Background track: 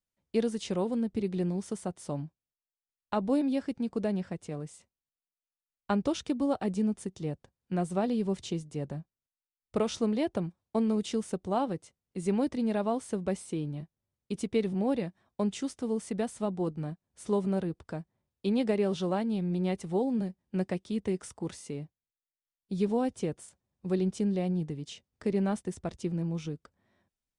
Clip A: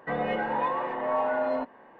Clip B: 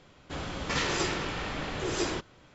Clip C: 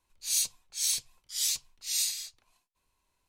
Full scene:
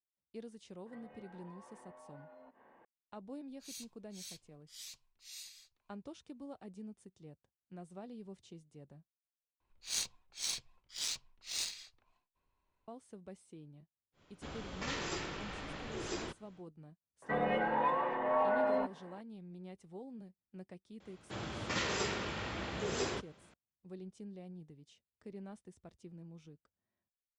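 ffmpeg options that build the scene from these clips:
ffmpeg -i bed.wav -i cue0.wav -i cue1.wav -i cue2.wav -filter_complex "[1:a]asplit=2[link_01][link_02];[3:a]asplit=2[link_03][link_04];[2:a]asplit=2[link_05][link_06];[0:a]volume=-19.5dB[link_07];[link_01]acompressor=threshold=-45dB:ratio=6:attack=3.2:release=140:knee=1:detection=peak[link_08];[link_03]equalizer=frequency=11000:width=0.41:gain=-11[link_09];[link_04]adynamicsmooth=sensitivity=3:basefreq=2600[link_10];[link_06]afreqshift=44[link_11];[link_07]asplit=2[link_12][link_13];[link_12]atrim=end=9.604[link_14];[link_10]atrim=end=3.28,asetpts=PTS-STARTPTS,volume=-2.5dB[link_15];[link_13]atrim=start=12.876[link_16];[link_08]atrim=end=1.99,asetpts=PTS-STARTPTS,volume=-11dB,afade=type=in:duration=0.004:curve=hsin,afade=type=out:start_time=1.986:duration=0.004:curve=hsin,adelay=860[link_17];[link_09]atrim=end=3.28,asetpts=PTS-STARTPTS,volume=-13.5dB,afade=type=in:duration=0.004:curve=hsin,afade=type=out:start_time=3.276:duration=0.004:curve=hsin,adelay=3380[link_18];[link_05]atrim=end=2.54,asetpts=PTS-STARTPTS,volume=-10dB,afade=type=in:duration=0.1,afade=type=out:start_time=2.44:duration=0.1,adelay=622692S[link_19];[link_02]atrim=end=1.99,asetpts=PTS-STARTPTS,volume=-4dB,afade=type=in:duration=0.004:curve=hsin,afade=type=out:start_time=1.986:duration=0.004:curve=hsin,adelay=17220[link_20];[link_11]atrim=end=2.54,asetpts=PTS-STARTPTS,volume=-6dB,afade=type=in:duration=0.004:curve=hsin,afade=type=out:start_time=2.536:duration=0.004:curve=hsin,adelay=926100S[link_21];[link_14][link_15]acrossfade=duration=0.004:curve1=hsin:curve2=hsin[link_22];[link_22][link_16]acrossfade=duration=0.004:curve1=hsin:curve2=hsin[link_23];[link_23][link_17][link_18][link_19][link_20][link_21]amix=inputs=6:normalize=0" out.wav

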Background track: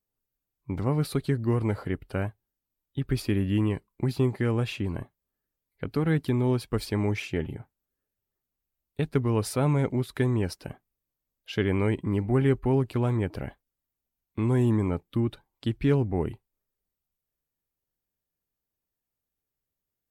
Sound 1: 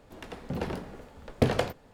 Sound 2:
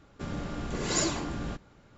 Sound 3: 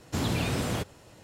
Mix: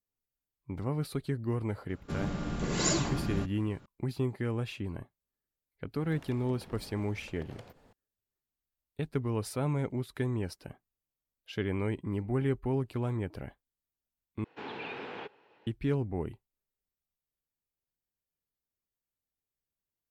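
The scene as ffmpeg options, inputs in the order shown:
ffmpeg -i bed.wav -i cue0.wav -i cue1.wav -i cue2.wav -filter_complex "[0:a]volume=-7dB[link_01];[2:a]equalizer=frequency=170:width_type=o:width=0.65:gain=6[link_02];[1:a]acompressor=threshold=-41dB:ratio=6:attack=2.6:release=176:knee=1:detection=peak[link_03];[3:a]highpass=330,equalizer=frequency=430:width_type=q:width=4:gain=8,equalizer=frequency=610:width_type=q:width=4:gain=-5,equalizer=frequency=860:width_type=q:width=4:gain=8,equalizer=frequency=1600:width_type=q:width=4:gain=5,equalizer=frequency=2500:width_type=q:width=4:gain=6,lowpass=frequency=3500:width=0.5412,lowpass=frequency=3500:width=1.3066[link_04];[link_01]asplit=2[link_05][link_06];[link_05]atrim=end=14.444[link_07];[link_04]atrim=end=1.23,asetpts=PTS-STARTPTS,volume=-10.5dB[link_08];[link_06]atrim=start=15.666[link_09];[link_02]atrim=end=1.97,asetpts=PTS-STARTPTS,volume=-1dB,afade=type=in:duration=0.004:curve=hsin,afade=type=out:start_time=1.966:duration=0.004:curve=hsin,adelay=1890[link_10];[link_03]atrim=end=1.93,asetpts=PTS-STARTPTS,volume=-5dB,afade=type=in:duration=0.004:curve=hsin,afade=type=out:start_time=1.926:duration=0.004:curve=hsin,adelay=6000[link_11];[link_07][link_08]acrossfade=duration=0.004:curve1=hsin:curve2=hsin[link_12];[link_12][link_09]acrossfade=duration=0.004:curve1=hsin:curve2=hsin[link_13];[link_13][link_10][link_11]amix=inputs=3:normalize=0" out.wav

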